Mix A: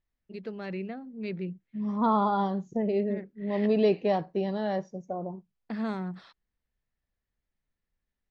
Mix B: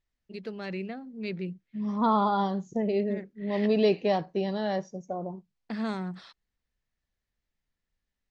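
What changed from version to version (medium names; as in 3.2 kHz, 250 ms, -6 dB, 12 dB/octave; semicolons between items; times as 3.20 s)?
master: add treble shelf 3.5 kHz +10 dB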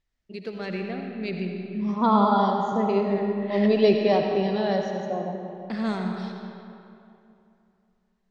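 reverb: on, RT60 2.8 s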